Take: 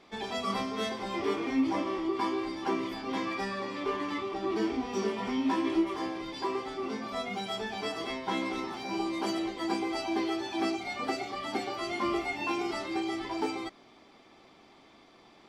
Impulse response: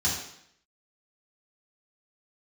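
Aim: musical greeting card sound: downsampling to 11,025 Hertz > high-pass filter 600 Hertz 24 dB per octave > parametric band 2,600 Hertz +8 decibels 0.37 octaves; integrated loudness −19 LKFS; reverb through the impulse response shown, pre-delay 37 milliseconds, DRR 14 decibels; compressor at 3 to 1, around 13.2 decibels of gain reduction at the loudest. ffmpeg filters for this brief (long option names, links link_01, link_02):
-filter_complex "[0:a]acompressor=threshold=-41dB:ratio=3,asplit=2[link_01][link_02];[1:a]atrim=start_sample=2205,adelay=37[link_03];[link_02][link_03]afir=irnorm=-1:irlink=0,volume=-23.5dB[link_04];[link_01][link_04]amix=inputs=2:normalize=0,aresample=11025,aresample=44100,highpass=frequency=600:width=0.5412,highpass=frequency=600:width=1.3066,equalizer=frequency=2600:width_type=o:width=0.37:gain=8,volume=24dB"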